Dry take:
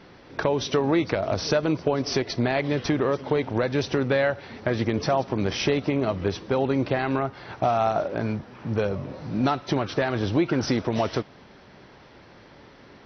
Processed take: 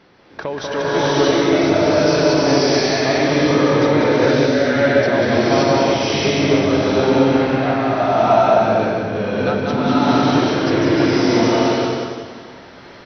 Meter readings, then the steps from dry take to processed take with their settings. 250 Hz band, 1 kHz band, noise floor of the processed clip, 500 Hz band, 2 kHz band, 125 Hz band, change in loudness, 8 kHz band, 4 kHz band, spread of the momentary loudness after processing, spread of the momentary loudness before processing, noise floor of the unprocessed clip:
+10.0 dB, +10.0 dB, -40 dBFS, +10.0 dB, +10.0 dB, +6.0 dB, +9.5 dB, n/a, +11.0 dB, 6 LU, 6 LU, -50 dBFS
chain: low shelf 140 Hz -7 dB; feedback echo 0.189 s, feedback 51%, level -4 dB; step gate "xxxxxxx.x.xx." 128 bpm; bloom reverb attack 0.63 s, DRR -11 dB; gain -1.5 dB

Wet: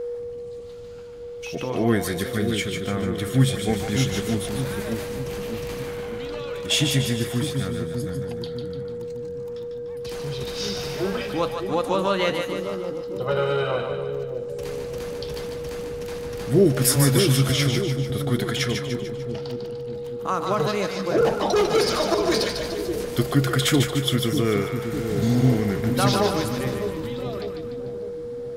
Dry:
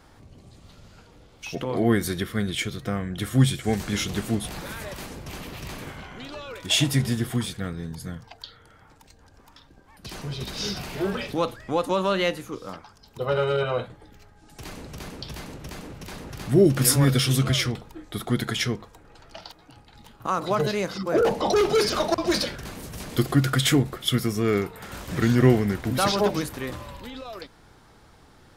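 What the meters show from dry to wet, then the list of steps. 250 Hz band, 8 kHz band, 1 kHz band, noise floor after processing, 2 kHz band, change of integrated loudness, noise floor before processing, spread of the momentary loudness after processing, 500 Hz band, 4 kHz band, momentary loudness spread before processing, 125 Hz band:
+1.5 dB, +1.5 dB, +1.5 dB, -33 dBFS, +1.0 dB, 0.0 dB, -54 dBFS, 13 LU, +3.0 dB, +1.5 dB, 19 LU, +1.5 dB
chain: spectral repair 24.92–25.53, 310–3300 Hz both; whine 480 Hz -27 dBFS; split-band echo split 550 Hz, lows 0.602 s, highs 0.148 s, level -5.5 dB

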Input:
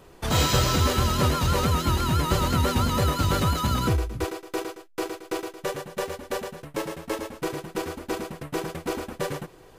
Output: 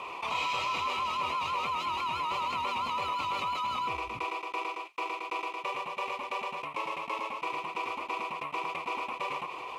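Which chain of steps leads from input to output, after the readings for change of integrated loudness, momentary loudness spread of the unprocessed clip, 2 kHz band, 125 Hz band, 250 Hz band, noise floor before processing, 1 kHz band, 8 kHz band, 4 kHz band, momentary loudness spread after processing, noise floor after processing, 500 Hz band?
-7.0 dB, 11 LU, -1.5 dB, -28.0 dB, -19.0 dB, -51 dBFS, -0.5 dB, -18.5 dB, -7.5 dB, 5 LU, -44 dBFS, -12.0 dB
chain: double band-pass 1600 Hz, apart 1.2 oct; fast leveller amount 70%; gain +1 dB

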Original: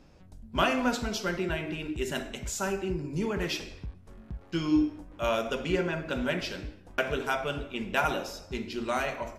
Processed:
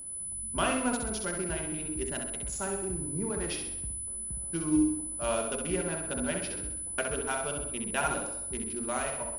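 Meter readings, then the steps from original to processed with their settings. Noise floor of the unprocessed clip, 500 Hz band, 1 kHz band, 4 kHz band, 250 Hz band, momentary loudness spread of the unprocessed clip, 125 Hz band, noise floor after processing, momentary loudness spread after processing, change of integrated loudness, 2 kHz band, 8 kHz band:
-53 dBFS, -3.0 dB, -3.0 dB, -5.5 dB, -1.5 dB, 9 LU, -3.0 dB, -38 dBFS, 6 LU, -0.5 dB, -4.5 dB, +12.0 dB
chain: Wiener smoothing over 15 samples; whine 10000 Hz -36 dBFS; flutter echo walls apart 11.2 m, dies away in 0.64 s; gain -4 dB

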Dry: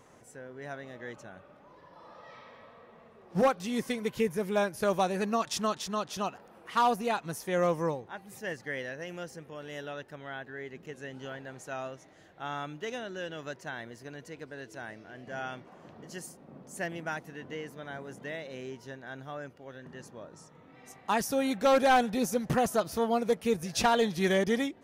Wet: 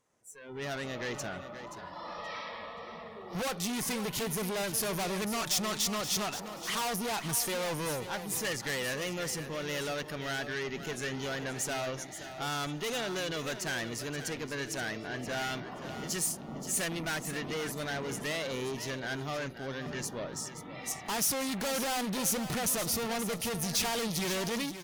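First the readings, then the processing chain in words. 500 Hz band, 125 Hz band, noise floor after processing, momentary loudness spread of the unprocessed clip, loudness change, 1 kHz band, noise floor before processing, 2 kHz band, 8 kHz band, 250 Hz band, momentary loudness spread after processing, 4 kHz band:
-5.0 dB, +1.5 dB, -46 dBFS, 20 LU, -2.0 dB, -6.0 dB, -56 dBFS, +1.0 dB, +10.0 dB, -2.5 dB, 10 LU, +5.5 dB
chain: in parallel at -1.5 dB: compressor, threshold -35 dBFS, peak gain reduction 13.5 dB; on the sum: wow and flutter 24 cents; tube stage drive 39 dB, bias 0.35; AGC gain up to 15 dB; spectral noise reduction 16 dB; high shelf 3200 Hz +9 dB; feedback echo 0.527 s, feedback 21%, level -11 dB; gain -9 dB

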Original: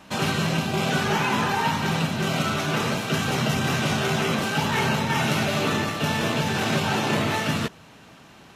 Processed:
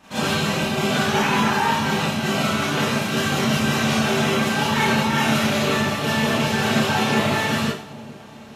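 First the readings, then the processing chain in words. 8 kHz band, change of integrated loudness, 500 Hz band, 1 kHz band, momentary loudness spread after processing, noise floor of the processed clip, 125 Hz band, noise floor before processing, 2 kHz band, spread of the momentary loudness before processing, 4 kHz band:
+3.5 dB, +3.5 dB, +3.5 dB, +3.5 dB, 3 LU, -40 dBFS, +1.0 dB, -49 dBFS, +3.5 dB, 2 LU, +3.5 dB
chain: split-band echo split 820 Hz, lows 0.412 s, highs 98 ms, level -15.5 dB; Schroeder reverb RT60 0.33 s, combs from 28 ms, DRR -8.5 dB; gain -5.5 dB

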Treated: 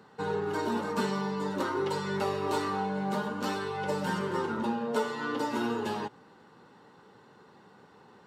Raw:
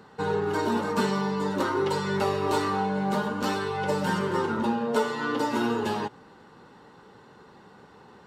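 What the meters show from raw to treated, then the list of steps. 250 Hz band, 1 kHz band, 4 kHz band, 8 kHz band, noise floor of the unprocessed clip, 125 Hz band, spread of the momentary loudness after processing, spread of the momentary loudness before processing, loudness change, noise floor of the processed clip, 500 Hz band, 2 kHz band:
-4.5 dB, -4.5 dB, -4.5 dB, -4.5 dB, -53 dBFS, -5.0 dB, 2 LU, 2 LU, -4.5 dB, -57 dBFS, -4.5 dB, -4.5 dB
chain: HPF 92 Hz; gain -4.5 dB

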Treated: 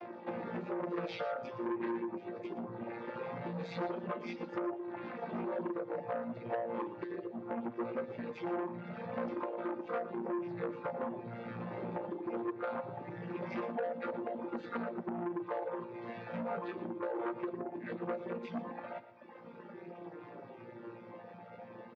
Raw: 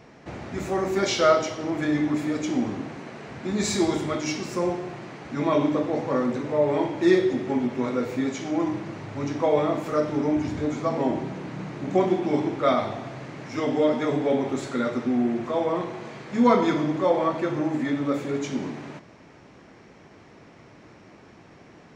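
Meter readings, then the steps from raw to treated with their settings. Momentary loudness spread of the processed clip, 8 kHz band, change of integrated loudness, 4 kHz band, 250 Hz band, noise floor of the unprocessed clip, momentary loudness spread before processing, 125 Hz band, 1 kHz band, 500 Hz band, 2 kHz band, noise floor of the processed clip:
12 LU, under -35 dB, -14.5 dB, -21.0 dB, -15.0 dB, -50 dBFS, 14 LU, -15.0 dB, -12.0 dB, -13.5 dB, -12.5 dB, -52 dBFS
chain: chord vocoder bare fifth, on A#2; LPF 4300 Hz 24 dB/oct; reverb removal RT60 1.1 s; HPF 520 Hz 12 dB/oct; tilt -2.5 dB/oct; notch 3000 Hz, Q 25; limiter -23 dBFS, peak gain reduction 11.5 dB; compressor 16:1, threshold -43 dBFS, peak gain reduction 17.5 dB; flange 0.21 Hz, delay 2.8 ms, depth 7.6 ms, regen +10%; on a send: echo 0.118 s -13.5 dB; on the sum: core saturation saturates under 930 Hz; gain +13.5 dB

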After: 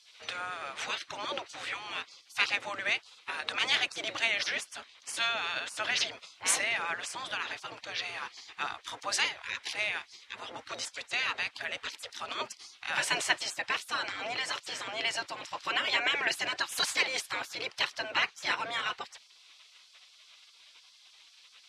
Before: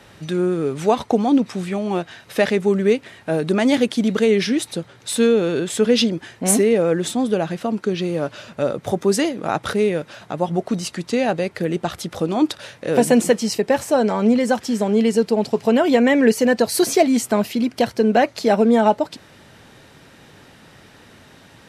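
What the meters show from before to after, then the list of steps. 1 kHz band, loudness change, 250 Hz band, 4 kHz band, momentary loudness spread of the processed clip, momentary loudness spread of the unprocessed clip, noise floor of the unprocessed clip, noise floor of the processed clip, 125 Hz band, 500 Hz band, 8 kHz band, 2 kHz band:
-12.0 dB, -13.0 dB, -34.0 dB, -2.0 dB, 12 LU, 9 LU, -48 dBFS, -60 dBFS, -29.5 dB, -25.5 dB, -9.0 dB, -2.0 dB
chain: LPF 3300 Hz 12 dB/oct; spectral gate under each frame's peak -20 dB weak; tilt +3 dB/oct

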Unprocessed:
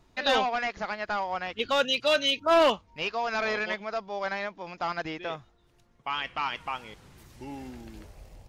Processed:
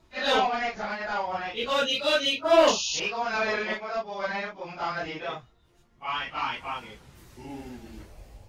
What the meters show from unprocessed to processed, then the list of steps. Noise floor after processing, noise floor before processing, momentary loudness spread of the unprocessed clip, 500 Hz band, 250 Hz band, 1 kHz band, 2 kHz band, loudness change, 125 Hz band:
-61 dBFS, -63 dBFS, 18 LU, +1.5 dB, +1.0 dB, +1.0 dB, +1.0 dB, +1.5 dB, +1.0 dB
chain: phase scrambler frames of 0.1 s; painted sound noise, 2.67–3, 2500–7000 Hz -31 dBFS; gain +1 dB

